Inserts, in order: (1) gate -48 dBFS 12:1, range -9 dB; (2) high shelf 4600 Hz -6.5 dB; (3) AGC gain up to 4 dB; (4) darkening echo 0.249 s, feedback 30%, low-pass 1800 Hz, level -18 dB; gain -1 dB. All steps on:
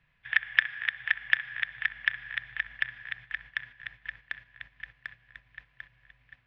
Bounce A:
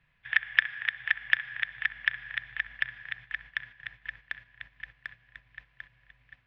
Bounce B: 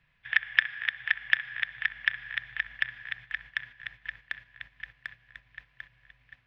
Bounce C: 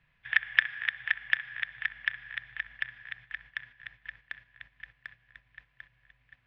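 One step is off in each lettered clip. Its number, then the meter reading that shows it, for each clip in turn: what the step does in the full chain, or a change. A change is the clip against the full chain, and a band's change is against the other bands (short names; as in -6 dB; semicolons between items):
4, echo-to-direct -20.0 dB to none; 2, 4 kHz band +1.5 dB; 3, momentary loudness spread change -1 LU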